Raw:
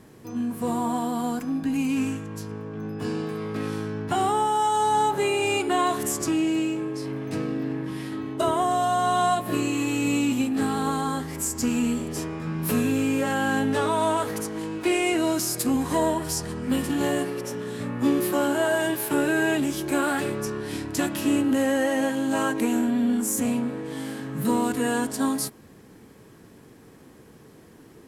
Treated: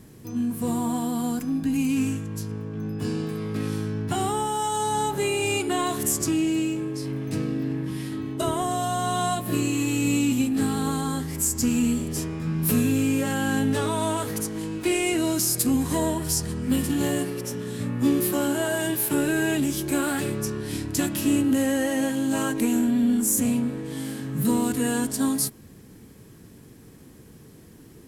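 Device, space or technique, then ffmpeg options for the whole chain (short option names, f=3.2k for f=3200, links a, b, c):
smiley-face EQ: -af "lowshelf=f=200:g=5.5,equalizer=f=860:t=o:w=2.7:g=-6.5,highshelf=f=8k:g=5.5,volume=1.5dB"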